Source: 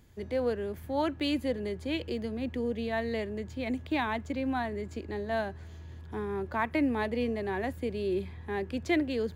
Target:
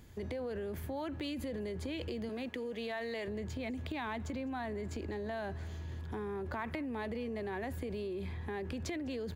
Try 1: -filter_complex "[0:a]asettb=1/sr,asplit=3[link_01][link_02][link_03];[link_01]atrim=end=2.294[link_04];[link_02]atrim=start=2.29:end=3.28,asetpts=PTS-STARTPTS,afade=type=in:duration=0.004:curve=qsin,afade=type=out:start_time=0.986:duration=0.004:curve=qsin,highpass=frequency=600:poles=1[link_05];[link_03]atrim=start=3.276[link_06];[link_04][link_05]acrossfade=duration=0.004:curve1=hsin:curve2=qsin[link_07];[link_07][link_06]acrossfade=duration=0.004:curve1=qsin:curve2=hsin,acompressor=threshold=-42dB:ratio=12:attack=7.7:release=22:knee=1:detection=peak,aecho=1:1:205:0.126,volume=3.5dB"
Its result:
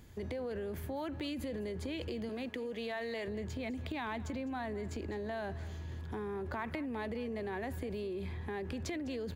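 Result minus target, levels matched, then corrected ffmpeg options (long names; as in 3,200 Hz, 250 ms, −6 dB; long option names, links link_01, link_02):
echo-to-direct +6.5 dB
-filter_complex "[0:a]asettb=1/sr,asplit=3[link_01][link_02][link_03];[link_01]atrim=end=2.294[link_04];[link_02]atrim=start=2.29:end=3.28,asetpts=PTS-STARTPTS,afade=type=in:duration=0.004:curve=qsin,afade=type=out:start_time=0.986:duration=0.004:curve=qsin,highpass=frequency=600:poles=1[link_05];[link_03]atrim=start=3.276[link_06];[link_04][link_05]acrossfade=duration=0.004:curve1=hsin:curve2=qsin[link_07];[link_07][link_06]acrossfade=duration=0.004:curve1=qsin:curve2=hsin,acompressor=threshold=-42dB:ratio=12:attack=7.7:release=22:knee=1:detection=peak,aecho=1:1:205:0.0596,volume=3.5dB"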